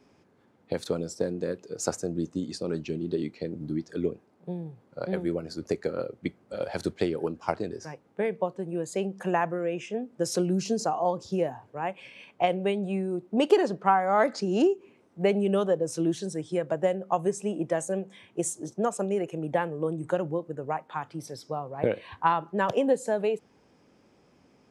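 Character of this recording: noise floor -63 dBFS; spectral tilt -5.5 dB/octave

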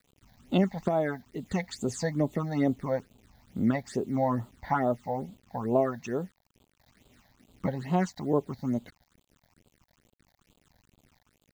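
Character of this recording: a quantiser's noise floor 10-bit, dither none; phasing stages 8, 2.3 Hz, lowest notch 350–1800 Hz

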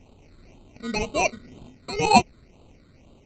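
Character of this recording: aliases and images of a low sample rate 1.7 kHz, jitter 0%; phasing stages 8, 2 Hz, lowest notch 800–1800 Hz; SBC

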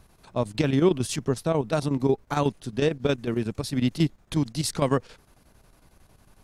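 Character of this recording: chopped level 11 Hz, depth 60%, duty 75%

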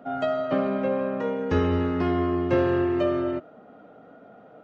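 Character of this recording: noise floor -50 dBFS; spectral tilt -5.0 dB/octave

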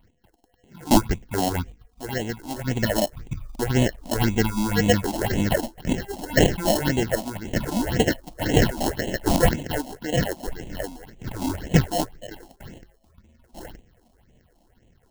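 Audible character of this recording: aliases and images of a low sample rate 1.2 kHz, jitter 0%; phasing stages 6, 1.9 Hz, lowest notch 110–1400 Hz

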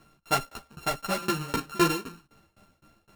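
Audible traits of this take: a buzz of ramps at a fixed pitch in blocks of 32 samples; tremolo saw down 3.9 Hz, depth 100%; a shimmering, thickened sound

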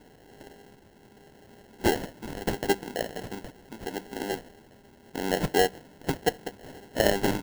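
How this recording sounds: phasing stages 2, 0.78 Hz, lowest notch 760–2300 Hz; aliases and images of a low sample rate 1.2 kHz, jitter 0%

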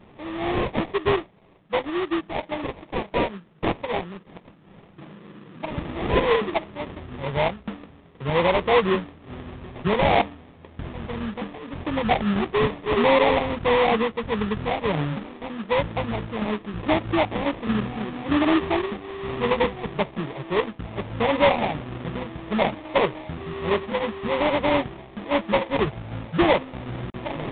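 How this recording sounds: aliases and images of a low sample rate 1.5 kHz, jitter 20%; µ-law

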